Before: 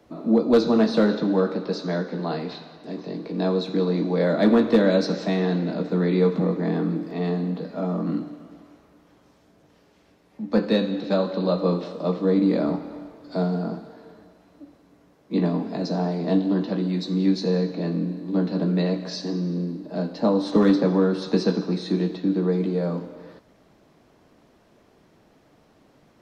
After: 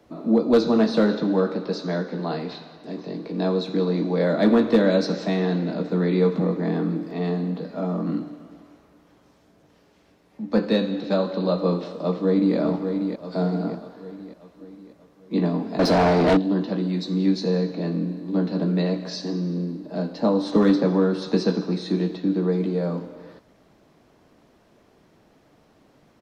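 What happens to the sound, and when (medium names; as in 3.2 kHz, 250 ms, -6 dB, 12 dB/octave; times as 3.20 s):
12.00–12.56 s: echo throw 590 ms, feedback 50%, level -7 dB
15.79–16.37 s: overdrive pedal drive 28 dB, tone 2.1 kHz, clips at -9.5 dBFS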